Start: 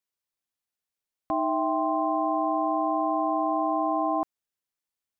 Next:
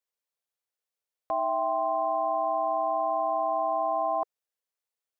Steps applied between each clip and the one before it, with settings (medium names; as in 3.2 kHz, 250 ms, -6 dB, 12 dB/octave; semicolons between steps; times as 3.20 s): resonant low shelf 370 Hz -7.5 dB, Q 3; trim -2.5 dB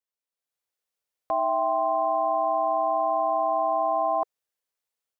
level rider gain up to 8 dB; trim -5 dB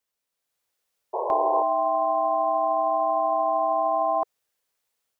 peak limiter -24.5 dBFS, peak gain reduction 8.5 dB; painted sound noise, 1.13–1.63 s, 360–1100 Hz -36 dBFS; trim +8.5 dB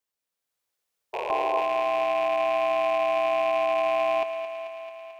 rattle on loud lows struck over -43 dBFS, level -21 dBFS; thinning echo 220 ms, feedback 72%, high-pass 240 Hz, level -10 dB; trim -3.5 dB